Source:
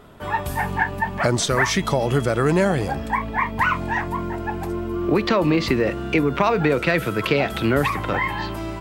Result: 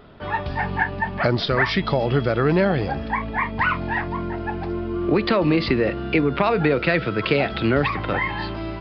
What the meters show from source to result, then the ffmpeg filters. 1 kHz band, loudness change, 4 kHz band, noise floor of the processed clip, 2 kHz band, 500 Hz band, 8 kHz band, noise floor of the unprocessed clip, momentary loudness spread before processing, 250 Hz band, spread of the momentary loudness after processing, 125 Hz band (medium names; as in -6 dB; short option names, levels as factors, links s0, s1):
-1.5 dB, -0.5 dB, -0.5 dB, -31 dBFS, 0.0 dB, 0.0 dB, under -25 dB, -31 dBFS, 8 LU, 0.0 dB, 8 LU, 0.0 dB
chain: -af "equalizer=f=1000:t=o:w=0.33:g=-3.5,aresample=11025,aresample=44100"